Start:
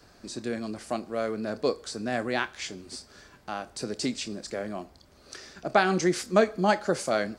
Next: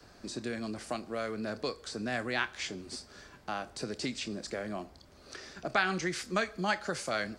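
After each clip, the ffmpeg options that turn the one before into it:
ffmpeg -i in.wav -filter_complex "[0:a]highshelf=frequency=10000:gain=-5,acrossover=split=120|1200|3700[link_01][link_02][link_03][link_04];[link_02]acompressor=threshold=-34dB:ratio=6[link_05];[link_04]alimiter=level_in=8.5dB:limit=-24dB:level=0:latency=1:release=196,volume=-8.5dB[link_06];[link_01][link_05][link_03][link_06]amix=inputs=4:normalize=0" out.wav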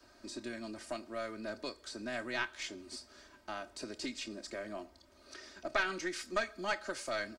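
ffmpeg -i in.wav -af "lowshelf=frequency=190:gain=-6.5,aecho=1:1:3.2:0.74,aeval=exprs='0.237*(cos(1*acos(clip(val(0)/0.237,-1,1)))-cos(1*PI/2))+0.075*(cos(2*acos(clip(val(0)/0.237,-1,1)))-cos(2*PI/2))':channel_layout=same,volume=-6dB" out.wav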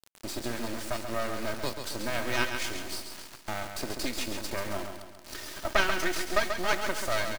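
ffmpeg -i in.wav -filter_complex "[0:a]asplit=2[link_01][link_02];[link_02]acompressor=threshold=-46dB:ratio=6,volume=-2dB[link_03];[link_01][link_03]amix=inputs=2:normalize=0,acrusher=bits=5:dc=4:mix=0:aa=0.000001,aecho=1:1:136|272|408|544|680|816:0.447|0.223|0.112|0.0558|0.0279|0.014,volume=8dB" out.wav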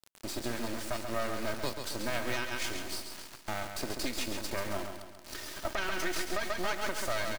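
ffmpeg -i in.wav -af "alimiter=limit=-17.5dB:level=0:latency=1:release=93,volume=-1.5dB" out.wav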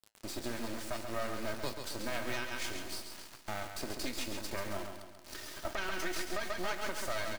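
ffmpeg -i in.wav -af "flanger=delay=9:depth=4:regen=-74:speed=0.64:shape=sinusoidal,volume=1dB" out.wav

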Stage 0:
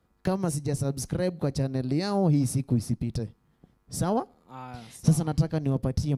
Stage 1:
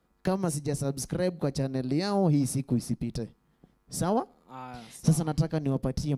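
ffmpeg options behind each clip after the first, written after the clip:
ffmpeg -i in.wav -af "equalizer=frequency=95:width=2.4:gain=-12" out.wav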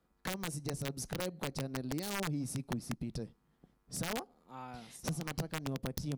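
ffmpeg -i in.wav -af "acompressor=threshold=-30dB:ratio=3,aeval=exprs='(mod(14.1*val(0)+1,2)-1)/14.1':channel_layout=same,volume=-5dB" out.wav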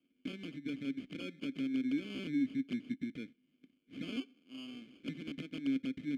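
ffmpeg -i in.wav -filter_complex "[0:a]asplit=2[link_01][link_02];[link_02]highpass=frequency=720:poles=1,volume=9dB,asoftclip=type=tanh:threshold=-27.5dB[link_03];[link_01][link_03]amix=inputs=2:normalize=0,lowpass=frequency=2000:poles=1,volume=-6dB,acrusher=samples=23:mix=1:aa=0.000001,asplit=3[link_04][link_05][link_06];[link_04]bandpass=frequency=270:width_type=q:width=8,volume=0dB[link_07];[link_05]bandpass=frequency=2290:width_type=q:width=8,volume=-6dB[link_08];[link_06]bandpass=frequency=3010:width_type=q:width=8,volume=-9dB[link_09];[link_07][link_08][link_09]amix=inputs=3:normalize=0,volume=12dB" out.wav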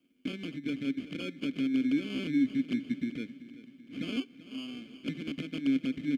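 ffmpeg -i in.wav -af "aecho=1:1:384|768|1152|1536|1920:0.158|0.0856|0.0462|0.025|0.0135,volume=6dB" out.wav

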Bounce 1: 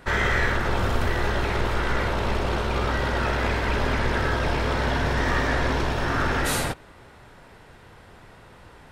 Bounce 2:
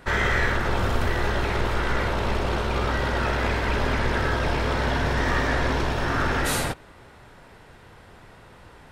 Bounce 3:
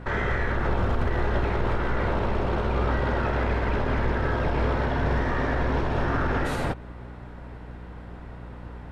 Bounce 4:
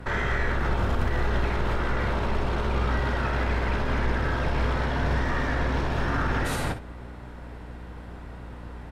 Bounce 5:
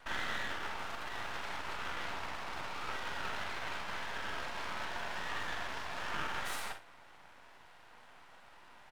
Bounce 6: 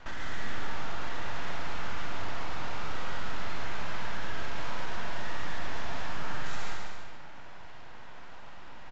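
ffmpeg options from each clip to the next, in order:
ffmpeg -i in.wav -af anull out.wav
ffmpeg -i in.wav -af "alimiter=limit=-19.5dB:level=0:latency=1:release=132,aeval=exprs='val(0)+0.00562*(sin(2*PI*60*n/s)+sin(2*PI*2*60*n/s)/2+sin(2*PI*3*60*n/s)/3+sin(2*PI*4*60*n/s)/4+sin(2*PI*5*60*n/s)/5)':channel_layout=same,lowpass=frequency=1200:poles=1,volume=5dB" out.wav
ffmpeg -i in.wav -filter_complex "[0:a]aemphasis=mode=production:type=cd,acrossover=split=250|940[link_01][link_02][link_03];[link_02]alimiter=level_in=4.5dB:limit=-24dB:level=0:latency=1,volume=-4.5dB[link_04];[link_01][link_04][link_03]amix=inputs=3:normalize=0,aecho=1:1:54|64:0.211|0.178" out.wav
ffmpeg -i in.wav -filter_complex "[0:a]highpass=frequency=730:width=0.5412,highpass=frequency=730:width=1.3066,aeval=exprs='max(val(0),0)':channel_layout=same,asplit=2[link_01][link_02];[link_02]adelay=44,volume=-8.5dB[link_03];[link_01][link_03]amix=inputs=2:normalize=0,volume=-4dB" out.wav
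ffmpeg -i in.wav -af "lowshelf=frequency=320:gain=9.5,aresample=16000,asoftclip=type=tanh:threshold=-30dB,aresample=44100,aecho=1:1:140|252|341.6|413.3|470.6:0.631|0.398|0.251|0.158|0.1,volume=4.5dB" out.wav

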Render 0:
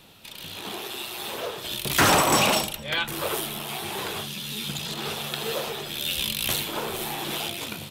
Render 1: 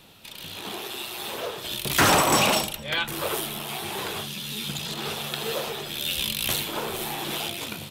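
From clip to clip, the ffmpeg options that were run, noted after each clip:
ffmpeg -i in.wav -af anull out.wav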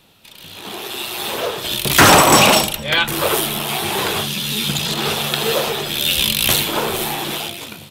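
ffmpeg -i in.wav -af "dynaudnorm=framelen=200:gausssize=9:maxgain=13.5dB,volume=-1dB" out.wav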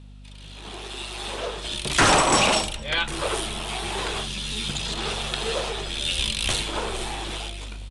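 ffmpeg -i in.wav -af "aresample=22050,aresample=44100,aeval=exprs='val(0)+0.0178*(sin(2*PI*50*n/s)+sin(2*PI*2*50*n/s)/2+sin(2*PI*3*50*n/s)/3+sin(2*PI*4*50*n/s)/4+sin(2*PI*5*50*n/s)/5)':channel_layout=same,asubboost=boost=5.5:cutoff=61,volume=-8dB" out.wav

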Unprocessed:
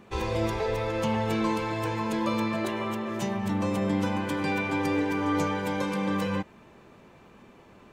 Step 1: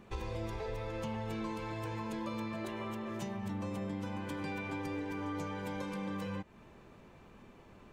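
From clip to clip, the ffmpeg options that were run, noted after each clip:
ffmpeg -i in.wav -af "lowshelf=frequency=77:gain=11,acompressor=threshold=-33dB:ratio=3,volume=-5dB" out.wav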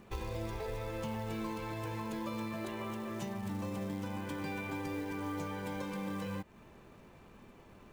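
ffmpeg -i in.wav -af "acrusher=bits=5:mode=log:mix=0:aa=0.000001" out.wav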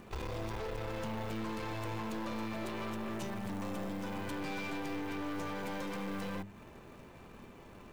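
ffmpeg -i in.wav -af "bandreject=frequency=50:width_type=h:width=6,bandreject=frequency=100:width_type=h:width=6,bandreject=frequency=150:width_type=h:width=6,bandreject=frequency=200:width_type=h:width=6,aeval=exprs='(tanh(141*val(0)+0.6)-tanh(0.6))/141':channel_layout=same,volume=7dB" out.wav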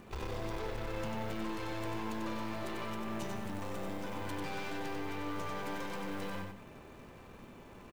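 ffmpeg -i in.wav -af "aecho=1:1:94|188|282|376:0.596|0.173|0.0501|0.0145,volume=-1dB" out.wav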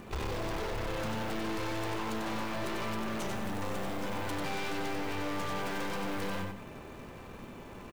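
ffmpeg -i in.wav -af "aeval=exprs='0.0188*(abs(mod(val(0)/0.0188+3,4)-2)-1)':channel_layout=same,volume=6dB" out.wav

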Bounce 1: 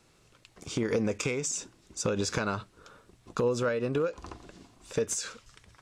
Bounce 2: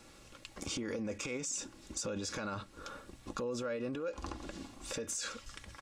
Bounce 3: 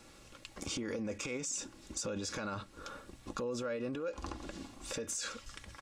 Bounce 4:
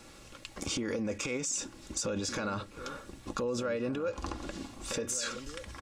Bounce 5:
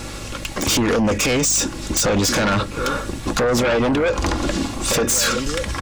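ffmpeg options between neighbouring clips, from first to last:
ffmpeg -i in.wav -af "alimiter=level_in=4.5dB:limit=-24dB:level=0:latency=1:release=25,volume=-4.5dB,acompressor=threshold=-45dB:ratio=2.5,aecho=1:1:3.6:0.48,volume=5.5dB" out.wav
ffmpeg -i in.wav -af anull out.wav
ffmpeg -i in.wav -filter_complex "[0:a]asplit=2[link_01][link_02];[link_02]adelay=1516,volume=-12dB,highshelf=frequency=4000:gain=-34.1[link_03];[link_01][link_03]amix=inputs=2:normalize=0,volume=4.5dB" out.wav
ffmpeg -i in.wav -af "aeval=exprs='0.112*sin(PI/2*3.98*val(0)/0.112)':channel_layout=same,aeval=exprs='val(0)+0.0126*(sin(2*PI*50*n/s)+sin(2*PI*2*50*n/s)/2+sin(2*PI*3*50*n/s)/3+sin(2*PI*4*50*n/s)/4+sin(2*PI*5*50*n/s)/5)':channel_layout=same,volume=4.5dB" out.wav

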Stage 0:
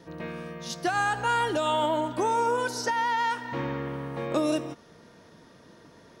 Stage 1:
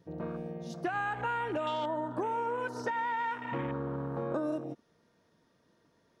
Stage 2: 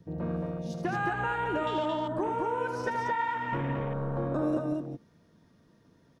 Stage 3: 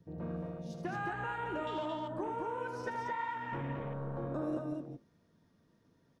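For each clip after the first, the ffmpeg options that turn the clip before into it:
ffmpeg -i in.wav -af "afwtdn=0.0158,acompressor=threshold=-31dB:ratio=4" out.wav
ffmpeg -i in.wav -filter_complex "[0:a]acrossover=split=260|890|3300[link_01][link_02][link_03][link_04];[link_01]aeval=exprs='0.0251*sin(PI/2*2*val(0)/0.0251)':channel_layout=same[link_05];[link_05][link_02][link_03][link_04]amix=inputs=4:normalize=0,aecho=1:1:78.72|221.6:0.398|0.708" out.wav
ffmpeg -i in.wav -af "flanger=delay=7.3:depth=6.1:regen=-75:speed=1.5:shape=sinusoidal,volume=-3dB" out.wav

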